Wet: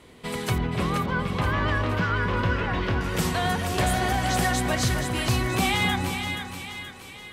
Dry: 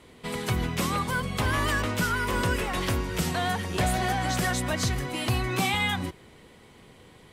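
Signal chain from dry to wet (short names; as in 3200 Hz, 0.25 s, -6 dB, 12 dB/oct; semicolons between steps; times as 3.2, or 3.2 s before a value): 0.58–3.01 air absorption 240 m; split-band echo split 1100 Hz, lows 0.262 s, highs 0.476 s, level -6 dB; gain +1.5 dB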